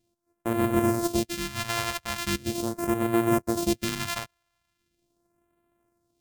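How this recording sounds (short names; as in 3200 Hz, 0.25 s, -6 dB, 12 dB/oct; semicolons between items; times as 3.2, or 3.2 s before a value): a buzz of ramps at a fixed pitch in blocks of 128 samples; phasing stages 2, 0.4 Hz, lowest notch 270–4900 Hz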